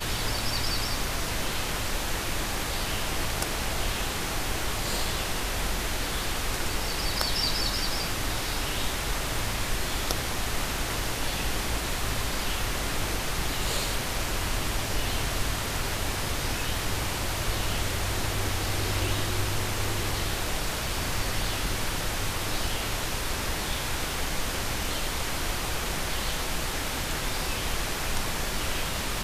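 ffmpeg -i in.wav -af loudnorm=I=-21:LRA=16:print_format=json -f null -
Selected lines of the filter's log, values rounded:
"input_i" : "-29.1",
"input_tp" : "-6.4",
"input_lra" : "1.6",
"input_thresh" : "-39.1",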